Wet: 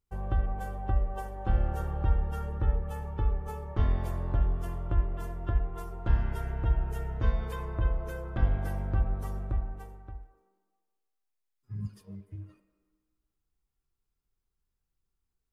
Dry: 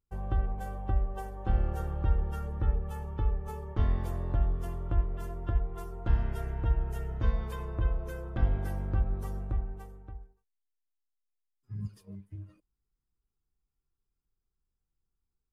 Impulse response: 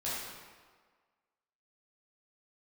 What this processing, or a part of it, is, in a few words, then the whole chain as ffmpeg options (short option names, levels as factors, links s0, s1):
filtered reverb send: -filter_complex "[0:a]asplit=2[s0][s1];[s1]highpass=f=250:w=0.5412,highpass=f=250:w=1.3066,lowpass=3200[s2];[1:a]atrim=start_sample=2205[s3];[s2][s3]afir=irnorm=-1:irlink=0,volume=0.251[s4];[s0][s4]amix=inputs=2:normalize=0,volume=1.12"